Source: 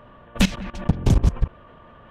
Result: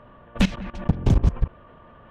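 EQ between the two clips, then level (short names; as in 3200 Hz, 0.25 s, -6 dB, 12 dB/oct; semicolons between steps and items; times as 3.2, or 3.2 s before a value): LPF 2900 Hz 6 dB/oct; -1.0 dB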